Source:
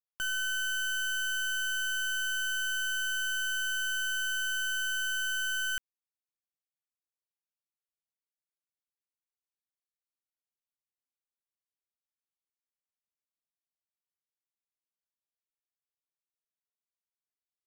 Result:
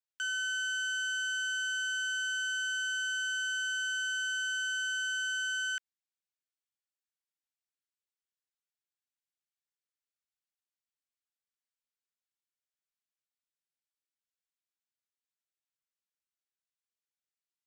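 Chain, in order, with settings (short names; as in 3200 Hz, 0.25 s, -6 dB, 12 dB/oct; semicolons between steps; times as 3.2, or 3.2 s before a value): elliptic band-pass 1400–8400 Hz, stop band 50 dB; gain -1 dB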